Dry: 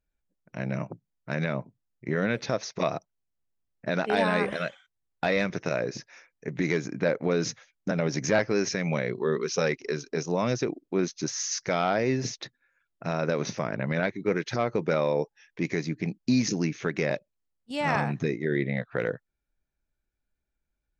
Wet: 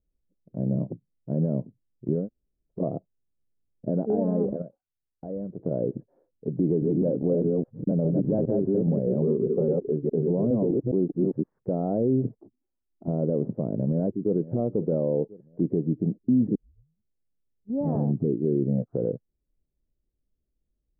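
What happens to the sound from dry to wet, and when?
2.21–2.77 s: room tone, crossfade 0.16 s
4.62–5.59 s: gain -10 dB
6.61–11.44 s: chunks repeated in reverse 205 ms, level -1 dB
12.37–13.08 s: static phaser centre 510 Hz, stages 6
13.83–14.36 s: echo throw 520 ms, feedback 45%, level -18 dB
16.55 s: tape start 1.29 s
whole clip: inverse Chebyshev low-pass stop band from 3.1 kHz, stop band 80 dB; peak limiter -21 dBFS; dynamic bell 240 Hz, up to +3 dB, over -44 dBFS, Q 1.9; trim +4.5 dB

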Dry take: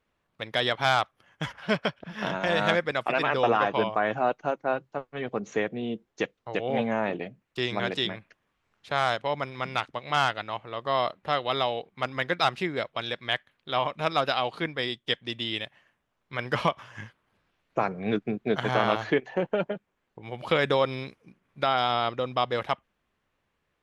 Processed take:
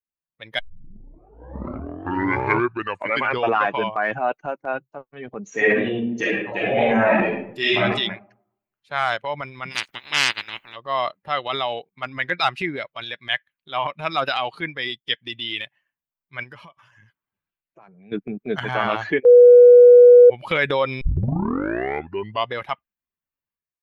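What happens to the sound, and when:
0.59 s: tape start 2.96 s
5.50–7.80 s: reverb throw, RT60 0.99 s, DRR -6.5 dB
9.70–10.75 s: spectral peaks clipped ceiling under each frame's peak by 24 dB
16.43–18.12 s: compression 2.5:1, threshold -43 dBFS
19.25–20.30 s: bleep 488 Hz -10 dBFS
21.01 s: tape start 1.51 s
whole clip: expander on every frequency bin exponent 1.5; dynamic bell 2.1 kHz, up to +6 dB, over -44 dBFS, Q 1.2; transient shaper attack -2 dB, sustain +6 dB; trim +5 dB

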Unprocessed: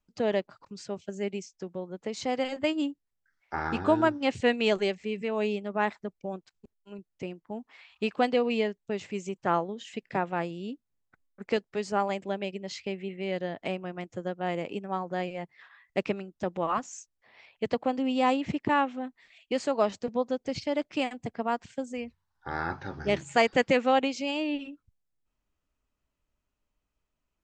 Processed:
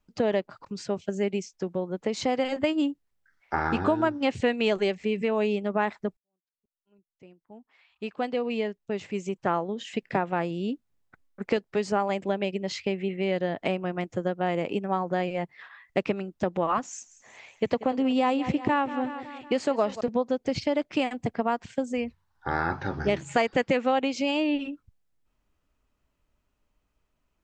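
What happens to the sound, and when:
6.17–9.99 s: fade in quadratic
16.83–20.01 s: feedback delay 185 ms, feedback 56%, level -16 dB
whole clip: treble shelf 4 kHz -5.5 dB; compression 3:1, threshold -30 dBFS; trim +7.5 dB

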